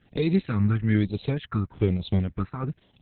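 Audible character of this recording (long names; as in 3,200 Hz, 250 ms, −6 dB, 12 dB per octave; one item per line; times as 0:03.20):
a quantiser's noise floor 12 bits, dither none
tremolo triangle 3.4 Hz, depth 65%
phaser sweep stages 4, 1.1 Hz, lowest notch 560–1,500 Hz
Opus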